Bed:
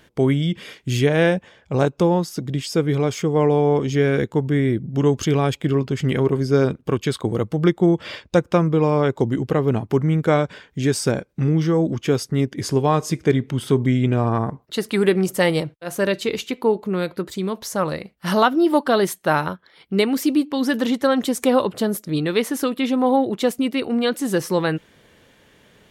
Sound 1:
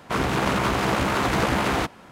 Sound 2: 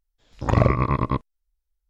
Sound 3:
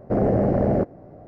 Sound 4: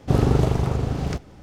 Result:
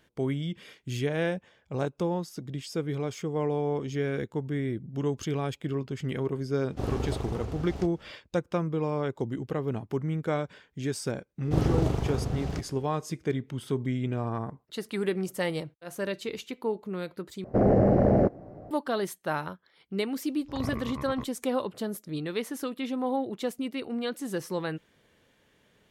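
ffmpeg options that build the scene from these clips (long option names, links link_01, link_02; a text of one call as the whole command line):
ffmpeg -i bed.wav -i cue0.wav -i cue1.wav -i cue2.wav -i cue3.wav -filter_complex "[4:a]asplit=2[link_01][link_02];[0:a]volume=-11.5dB[link_03];[link_01]equalizer=frequency=150:width=3.8:gain=-14[link_04];[link_03]asplit=2[link_05][link_06];[link_05]atrim=end=17.444[link_07];[3:a]atrim=end=1.27,asetpts=PTS-STARTPTS,volume=-1dB[link_08];[link_06]atrim=start=18.706[link_09];[link_04]atrim=end=1.42,asetpts=PTS-STARTPTS,volume=-10.5dB,afade=type=in:duration=0.004:curve=hsin,afade=type=out:start_time=1.416:duration=0.004:curve=hsin,adelay=6690[link_10];[link_02]atrim=end=1.42,asetpts=PTS-STARTPTS,volume=-7dB,afade=type=in:duration=0.004:curve=hsin,afade=type=out:start_time=1.416:duration=0.004:curve=hsin,adelay=11430[link_11];[2:a]atrim=end=1.89,asetpts=PTS-STARTPTS,volume=-17dB,afade=type=in:duration=0.004:curve=hsin,afade=type=out:start_time=1.886:duration=0.004:curve=hsin,adelay=20070[link_12];[link_07][link_08]acrossfade=duration=0.004:curve1=hsin:curve2=hsin[link_13];[link_13][link_09]acrossfade=duration=0.004:curve1=hsin:curve2=hsin[link_14];[link_14][link_10][link_11][link_12]amix=inputs=4:normalize=0" out.wav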